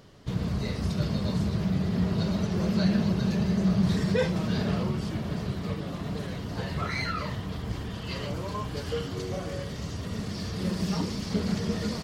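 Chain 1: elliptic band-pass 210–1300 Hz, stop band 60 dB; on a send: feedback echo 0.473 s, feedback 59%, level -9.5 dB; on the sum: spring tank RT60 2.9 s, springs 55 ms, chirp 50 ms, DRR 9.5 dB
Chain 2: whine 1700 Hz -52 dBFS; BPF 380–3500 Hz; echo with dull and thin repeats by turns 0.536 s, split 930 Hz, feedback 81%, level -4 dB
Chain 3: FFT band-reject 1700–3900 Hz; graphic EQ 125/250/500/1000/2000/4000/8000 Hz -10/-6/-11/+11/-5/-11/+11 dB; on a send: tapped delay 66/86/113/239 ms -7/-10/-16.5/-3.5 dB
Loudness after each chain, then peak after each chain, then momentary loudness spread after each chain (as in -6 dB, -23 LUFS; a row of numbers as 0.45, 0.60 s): -32.5, -34.5, -33.5 LUFS; -15.0, -16.0, -17.0 dBFS; 11, 6, 7 LU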